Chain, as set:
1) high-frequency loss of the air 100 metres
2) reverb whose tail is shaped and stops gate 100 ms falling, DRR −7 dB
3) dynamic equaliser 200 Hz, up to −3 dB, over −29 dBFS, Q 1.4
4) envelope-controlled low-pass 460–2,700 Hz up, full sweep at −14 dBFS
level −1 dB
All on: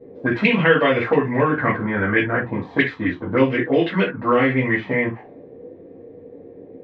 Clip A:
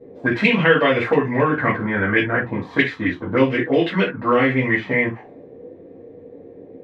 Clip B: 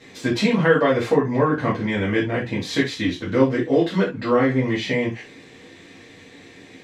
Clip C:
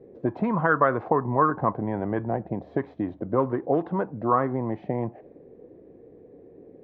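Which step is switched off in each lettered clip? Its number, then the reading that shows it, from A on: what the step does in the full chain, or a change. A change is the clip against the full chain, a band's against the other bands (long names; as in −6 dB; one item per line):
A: 1, 4 kHz band +2.0 dB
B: 4, 2 kHz band −5.5 dB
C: 2, change in momentary loudness spread +2 LU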